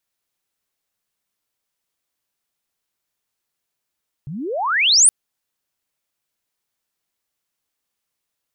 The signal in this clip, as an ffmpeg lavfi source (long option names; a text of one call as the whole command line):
ffmpeg -f lavfi -i "aevalsrc='pow(10,(-27.5+20.5*t/0.82)/20)*sin(2*PI*130*0.82/log(9900/130)*(exp(log(9900/130)*t/0.82)-1))':duration=0.82:sample_rate=44100" out.wav